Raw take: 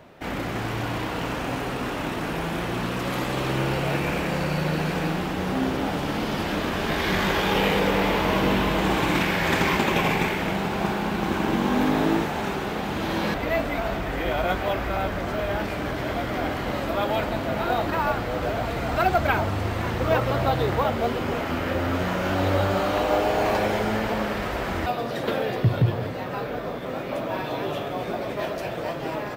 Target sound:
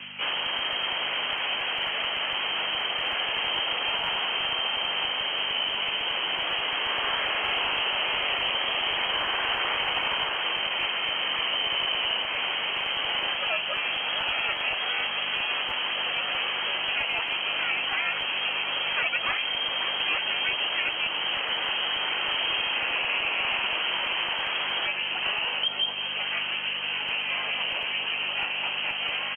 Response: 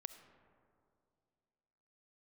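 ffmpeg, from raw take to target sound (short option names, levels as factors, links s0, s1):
-filter_complex "[0:a]asplit=3[s0][s1][s2];[s1]asetrate=35002,aresample=44100,atempo=1.25992,volume=0.794[s3];[s2]asetrate=58866,aresample=44100,atempo=0.749154,volume=0.891[s4];[s0][s3][s4]amix=inputs=3:normalize=0,lowpass=f=2800:t=q:w=0.5098,lowpass=f=2800:t=q:w=0.6013,lowpass=f=2800:t=q:w=0.9,lowpass=f=2800:t=q:w=2.563,afreqshift=-3300,aeval=exprs='val(0)+0.00501*(sin(2*PI*50*n/s)+sin(2*PI*2*50*n/s)/2+sin(2*PI*3*50*n/s)/3+sin(2*PI*4*50*n/s)/4+sin(2*PI*5*50*n/s)/5)':c=same,acrossover=split=150|2100[s5][s6][s7];[s5]acrusher=bits=6:mix=0:aa=0.000001[s8];[s8][s6][s7]amix=inputs=3:normalize=0,acrossover=split=130|400|980[s9][s10][s11][s12];[s9]acompressor=threshold=0.00126:ratio=4[s13];[s10]acompressor=threshold=0.00126:ratio=4[s14];[s11]acompressor=threshold=0.0112:ratio=4[s15];[s12]acompressor=threshold=0.02:ratio=4[s16];[s13][s14][s15][s16]amix=inputs=4:normalize=0,volume=1.78"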